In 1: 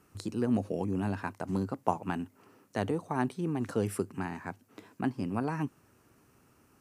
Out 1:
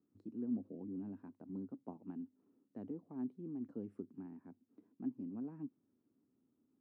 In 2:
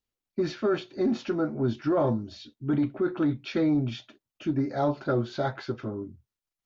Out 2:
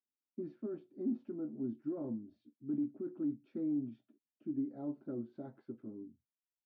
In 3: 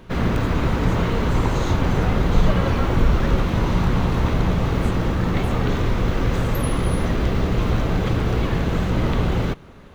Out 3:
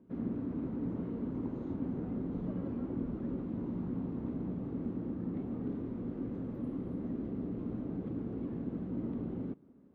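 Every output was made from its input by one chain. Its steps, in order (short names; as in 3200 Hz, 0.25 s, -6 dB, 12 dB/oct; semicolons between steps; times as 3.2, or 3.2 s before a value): band-pass 260 Hz, Q 3.1; gain -7.5 dB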